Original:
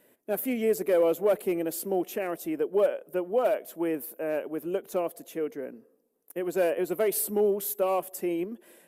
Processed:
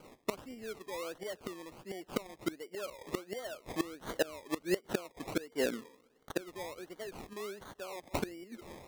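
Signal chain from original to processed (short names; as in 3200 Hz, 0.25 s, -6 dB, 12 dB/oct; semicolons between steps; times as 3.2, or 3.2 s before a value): flipped gate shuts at -25 dBFS, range -24 dB; decimation with a swept rate 24×, swing 60% 1.4 Hz; gain +6 dB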